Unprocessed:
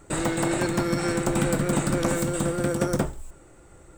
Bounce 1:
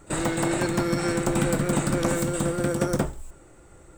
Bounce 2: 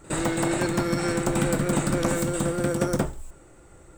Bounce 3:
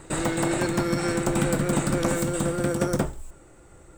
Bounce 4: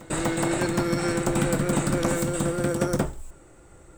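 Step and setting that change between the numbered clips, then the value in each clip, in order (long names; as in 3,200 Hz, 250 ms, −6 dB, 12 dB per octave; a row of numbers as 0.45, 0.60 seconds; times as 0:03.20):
echo ahead of the sound, delay time: 35, 63, 131, 245 milliseconds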